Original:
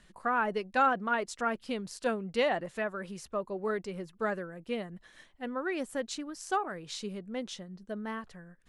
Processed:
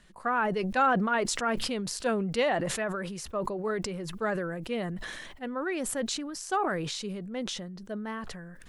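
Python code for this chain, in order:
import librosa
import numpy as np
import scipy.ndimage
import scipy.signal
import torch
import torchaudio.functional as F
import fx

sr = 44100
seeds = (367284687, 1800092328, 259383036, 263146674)

y = fx.sustainer(x, sr, db_per_s=28.0)
y = y * librosa.db_to_amplitude(1.0)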